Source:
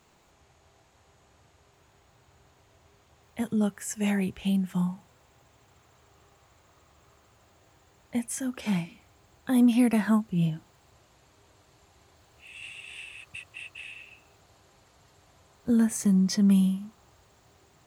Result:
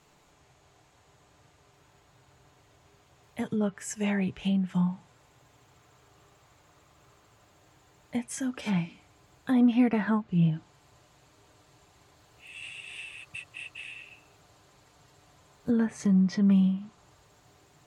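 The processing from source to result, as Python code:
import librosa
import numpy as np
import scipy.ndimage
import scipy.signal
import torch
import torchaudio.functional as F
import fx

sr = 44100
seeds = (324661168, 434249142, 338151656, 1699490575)

y = fx.env_lowpass_down(x, sr, base_hz=2700.0, full_db=-21.5)
y = y + 0.38 * np.pad(y, (int(6.8 * sr / 1000.0), 0))[:len(y)]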